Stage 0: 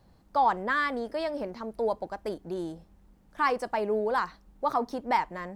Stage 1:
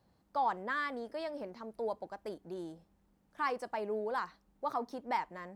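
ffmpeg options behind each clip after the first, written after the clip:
ffmpeg -i in.wav -af "highpass=frequency=110:poles=1,volume=-8dB" out.wav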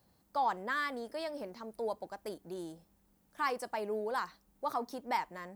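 ffmpeg -i in.wav -af "aemphasis=mode=production:type=50kf" out.wav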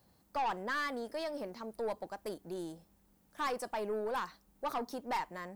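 ffmpeg -i in.wav -af "aeval=exprs='(tanh(35.5*val(0)+0.2)-tanh(0.2))/35.5':channel_layout=same,volume=2dB" out.wav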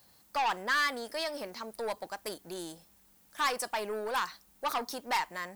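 ffmpeg -i in.wav -af "tiltshelf=frequency=970:gain=-7,volume=4.5dB" out.wav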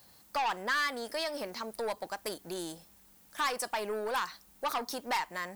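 ffmpeg -i in.wav -af "acompressor=threshold=-38dB:ratio=1.5,volume=3dB" out.wav

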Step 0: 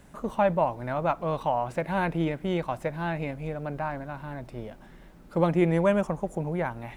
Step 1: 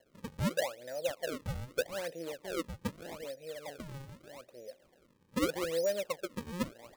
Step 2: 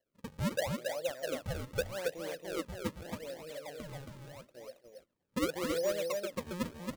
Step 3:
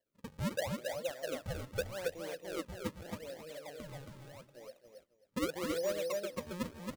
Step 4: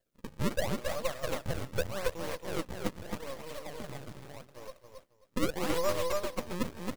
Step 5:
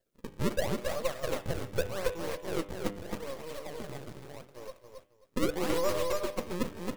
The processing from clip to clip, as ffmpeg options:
ffmpeg -i in.wav -filter_complex "[0:a]asplit=3[link_01][link_02][link_03];[link_01]bandpass=frequency=530:width_type=q:width=8,volume=0dB[link_04];[link_02]bandpass=frequency=1840:width_type=q:width=8,volume=-6dB[link_05];[link_03]bandpass=frequency=2480:width_type=q:width=8,volume=-9dB[link_06];[link_04][link_05][link_06]amix=inputs=3:normalize=0,acrusher=samples=36:mix=1:aa=0.000001:lfo=1:lforange=57.6:lforate=0.81,asoftclip=type=hard:threshold=-24.5dB" out.wav
ffmpeg -i in.wav -af "aecho=1:1:274:0.631,agate=range=-16dB:threshold=-53dB:ratio=16:detection=peak,volume=-1.5dB" out.wav
ffmpeg -i in.wav -af "aecho=1:1:264:0.188,volume=-2.5dB" out.wav
ffmpeg -i in.wav -af "aeval=exprs='max(val(0),0)':channel_layout=same,volume=9dB" out.wav
ffmpeg -i in.wav -af "equalizer=frequency=400:width_type=o:width=0.71:gain=5,bandreject=frequency=99.97:width_type=h:width=4,bandreject=frequency=199.94:width_type=h:width=4,bandreject=frequency=299.91:width_type=h:width=4,bandreject=frequency=399.88:width_type=h:width=4,bandreject=frequency=499.85:width_type=h:width=4,bandreject=frequency=599.82:width_type=h:width=4,bandreject=frequency=699.79:width_type=h:width=4,bandreject=frequency=799.76:width_type=h:width=4,bandreject=frequency=899.73:width_type=h:width=4,bandreject=frequency=999.7:width_type=h:width=4,bandreject=frequency=1099.67:width_type=h:width=4,bandreject=frequency=1199.64:width_type=h:width=4,bandreject=frequency=1299.61:width_type=h:width=4,bandreject=frequency=1399.58:width_type=h:width=4,bandreject=frequency=1499.55:width_type=h:width=4,bandreject=frequency=1599.52:width_type=h:width=4,bandreject=frequency=1699.49:width_type=h:width=4,bandreject=frequency=1799.46:width_type=h:width=4,bandreject=frequency=1899.43:width_type=h:width=4,bandreject=frequency=1999.4:width_type=h:width=4,bandreject=frequency=2099.37:width_type=h:width=4,bandreject=frequency=2199.34:width_type=h:width=4,bandreject=frequency=2299.31:width_type=h:width=4,bandreject=frequency=2399.28:width_type=h:width=4,bandreject=frequency=2499.25:width_type=h:width=4,bandreject=frequency=2599.22:width_type=h:width=4,bandreject=frequency=2699.19:width_type=h:width=4,bandreject=frequency=2799.16:width_type=h:width=4,bandreject=frequency=2899.13:width_type=h:width=4,bandreject=frequency=2999.1:width_type=h:width=4,bandreject=frequency=3099.07:width_type=h:width=4,bandreject=frequency=3199.04:width_type=h:width=4,bandreject=frequency=3299.01:width_type=h:width=4,bandreject=frequency=3398.98:width_type=h:width=4,bandreject=frequency=3498.95:width_type=h:width=4,bandreject=frequency=3598.92:width_type=h:width=4,bandreject=frequency=3698.89:width_type=h:width=4" out.wav

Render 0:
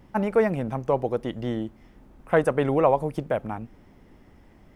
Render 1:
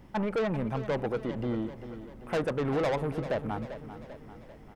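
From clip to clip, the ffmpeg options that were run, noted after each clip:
ffmpeg -i in.wav -filter_complex "[0:a]acrossover=split=3000[link_01][link_02];[link_02]acompressor=threshold=-59dB:ratio=4:attack=1:release=60[link_03];[link_01][link_03]amix=inputs=2:normalize=0,asoftclip=type=tanh:threshold=-25dB,aecho=1:1:393|786|1179|1572|1965|2358:0.251|0.133|0.0706|0.0374|0.0198|0.0105" out.wav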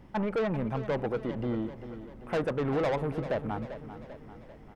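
ffmpeg -i in.wav -af "highshelf=frequency=5300:gain=-7" out.wav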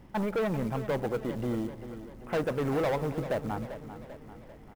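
ffmpeg -i in.wav -af "acrusher=bits=6:mode=log:mix=0:aa=0.000001,aecho=1:1:177:0.106" out.wav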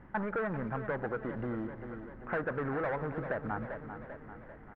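ffmpeg -i in.wav -af "acompressor=threshold=-31dB:ratio=6,lowpass=frequency=1600:width_type=q:width=3.4,volume=-2dB" out.wav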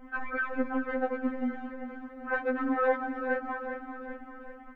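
ffmpeg -i in.wav -af "afftfilt=real='re*3.46*eq(mod(b,12),0)':imag='im*3.46*eq(mod(b,12),0)':win_size=2048:overlap=0.75,volume=7dB" out.wav

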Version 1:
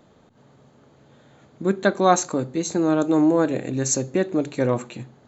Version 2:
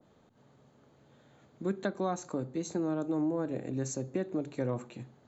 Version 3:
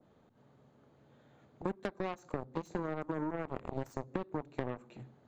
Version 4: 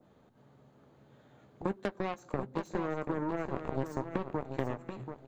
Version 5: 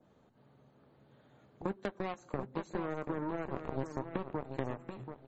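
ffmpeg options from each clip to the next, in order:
ffmpeg -i in.wav -filter_complex "[0:a]acrossover=split=190[link_01][link_02];[link_02]acompressor=threshold=-21dB:ratio=6[link_03];[link_01][link_03]amix=inputs=2:normalize=0,adynamicequalizer=threshold=0.00708:dfrequency=1500:dqfactor=0.7:tfrequency=1500:tqfactor=0.7:attack=5:release=100:ratio=0.375:range=3.5:mode=cutabove:tftype=highshelf,volume=-8.5dB" out.wav
ffmpeg -i in.wav -af "aeval=exprs='0.119*(cos(1*acos(clip(val(0)/0.119,-1,1)))-cos(1*PI/2))+0.0237*(cos(7*acos(clip(val(0)/0.119,-1,1)))-cos(7*PI/2))':channel_layout=same,acompressor=threshold=-39dB:ratio=6,highshelf=frequency=4800:gain=-11,volume=6.5dB" out.wav
ffmpeg -i in.wav -filter_complex "[0:a]asplit=2[link_01][link_02];[link_02]adelay=15,volume=-12.5dB[link_03];[link_01][link_03]amix=inputs=2:normalize=0,aecho=1:1:734|1468|2202:0.376|0.0902|0.0216,volume=2.5dB" out.wav
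ffmpeg -i in.wav -af "volume=-2.5dB" -ar 44100 -c:a libmp3lame -b:a 32k out.mp3

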